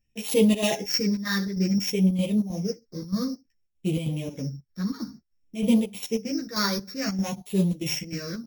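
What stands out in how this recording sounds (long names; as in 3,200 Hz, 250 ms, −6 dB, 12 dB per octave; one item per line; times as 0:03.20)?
a buzz of ramps at a fixed pitch in blocks of 8 samples
phaser sweep stages 6, 0.56 Hz, lowest notch 740–1,500 Hz
chopped level 3.2 Hz, depth 65%, duty 70%
a shimmering, thickened sound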